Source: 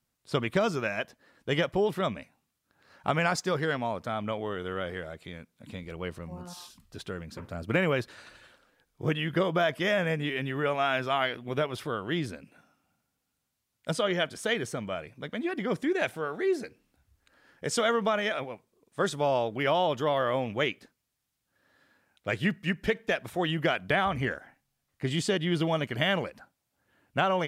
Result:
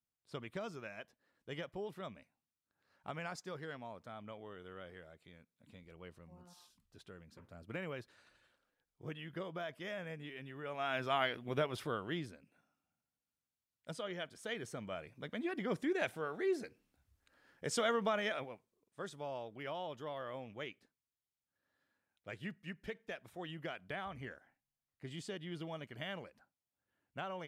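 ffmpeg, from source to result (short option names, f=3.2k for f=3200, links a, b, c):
-af "volume=1.5dB,afade=t=in:st=10.65:d=0.5:silence=0.281838,afade=t=out:st=11.92:d=0.42:silence=0.354813,afade=t=in:st=14.38:d=0.79:silence=0.421697,afade=t=out:st=18.29:d=0.72:silence=0.334965"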